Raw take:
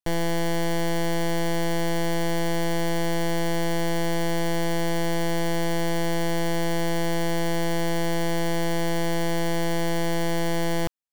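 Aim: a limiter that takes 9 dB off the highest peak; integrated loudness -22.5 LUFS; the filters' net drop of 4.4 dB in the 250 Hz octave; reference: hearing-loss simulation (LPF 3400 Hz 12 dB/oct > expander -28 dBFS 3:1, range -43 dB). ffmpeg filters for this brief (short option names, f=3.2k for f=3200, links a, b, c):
-af "equalizer=f=250:t=o:g=-8.5,alimiter=level_in=3dB:limit=-24dB:level=0:latency=1,volume=-3dB,lowpass=3.4k,agate=range=-43dB:threshold=-28dB:ratio=3,volume=26.5dB"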